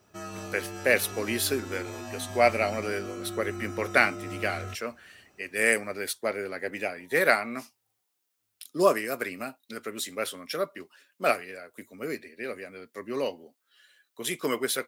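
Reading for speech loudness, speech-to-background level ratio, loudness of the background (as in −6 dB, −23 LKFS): −28.5 LKFS, 10.5 dB, −39.0 LKFS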